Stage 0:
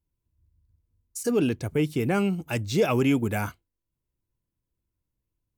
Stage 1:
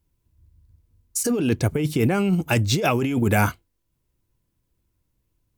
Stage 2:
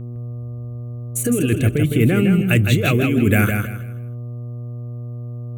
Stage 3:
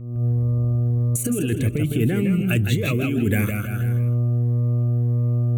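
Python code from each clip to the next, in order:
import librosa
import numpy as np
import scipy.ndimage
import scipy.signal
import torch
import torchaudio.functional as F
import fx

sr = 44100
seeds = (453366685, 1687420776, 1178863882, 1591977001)

y1 = fx.over_compress(x, sr, threshold_db=-27.0, ratio=-1.0)
y1 = F.gain(torch.from_numpy(y1), 7.0).numpy()
y2 = fx.dmg_buzz(y1, sr, base_hz=120.0, harmonics=10, level_db=-35.0, tilt_db=-9, odd_only=False)
y2 = fx.fixed_phaser(y2, sr, hz=2200.0, stages=4)
y2 = fx.echo_feedback(y2, sr, ms=160, feedback_pct=28, wet_db=-5.5)
y2 = F.gain(torch.from_numpy(y2), 5.0).numpy()
y3 = fx.recorder_agc(y2, sr, target_db=-10.5, rise_db_per_s=57.0, max_gain_db=30)
y3 = fx.notch_cascade(y3, sr, direction='rising', hz=1.7)
y3 = F.gain(torch.from_numpy(y3), -4.5).numpy()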